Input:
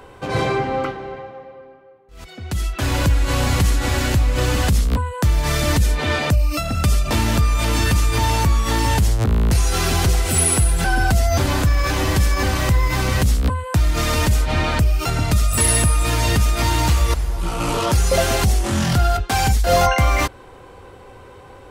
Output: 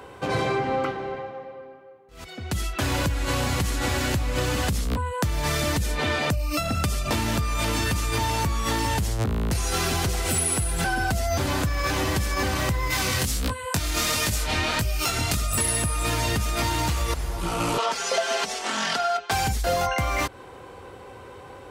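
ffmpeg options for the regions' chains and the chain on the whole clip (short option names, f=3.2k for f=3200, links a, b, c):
-filter_complex "[0:a]asettb=1/sr,asplit=3[a][b][c];[a]atrim=end=12.904[d];[b]atrim=start=12.9:end=15.37,asetpts=PTS-STARTPTS,afade=t=in:d=0.004:c=qsin,afade=t=out:st=2.466:d=0.004:c=qsin,highshelf=f=2.1k:g=10,flanger=delay=18:depth=5.8:speed=1.5[e];[c]atrim=start=15.366[f];[d][e]acrossfade=d=0.004:c1=hsin:c2=qsin[g];[g][f]acrossfade=d=0.004:c1=qsin:c2=hsin,asettb=1/sr,asplit=3[h][i][j];[h]atrim=end=17.784[k];[i]atrim=start=17.78:end=19.31,asetpts=PTS-STARTPTS,afade=t=in:d=0.004:c=qsin,afade=t=out:st=1.526:d=0.004:c=qsin,highpass=540,lowpass=6k,aecho=1:1:4.5:0.73,atrim=end_sample=67473[l];[j]atrim=start=19.306[m];[k][l]acrossfade=d=0.004:c1=hsin:c2=qsin[n];[n][m]acrossfade=d=0.004:c1=qsin:c2=hsin,highpass=52,lowshelf=f=110:g=-4.5,acompressor=threshold=-21dB:ratio=6"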